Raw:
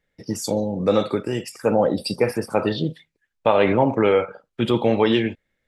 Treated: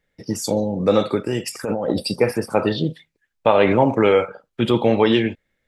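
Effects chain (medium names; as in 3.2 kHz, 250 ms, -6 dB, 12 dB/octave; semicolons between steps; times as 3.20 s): 1.46–2.00 s: compressor with a negative ratio -24 dBFS, ratio -1; 3.71–4.28 s: treble shelf 6.4 kHz +11.5 dB; trim +2 dB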